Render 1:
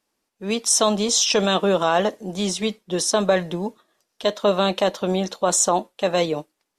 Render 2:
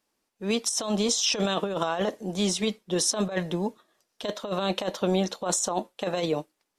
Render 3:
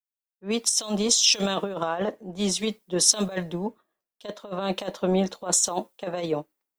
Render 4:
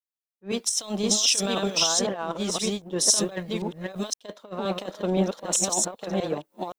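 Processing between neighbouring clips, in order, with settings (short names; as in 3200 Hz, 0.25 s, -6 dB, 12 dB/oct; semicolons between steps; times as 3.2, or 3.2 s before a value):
negative-ratio compressor -21 dBFS, ratio -0.5; gain -4 dB
added noise violet -65 dBFS; three-band expander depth 100%
reverse delay 0.517 s, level -1 dB; in parallel at -5 dB: crossover distortion -37 dBFS; on the sum: gain -6 dB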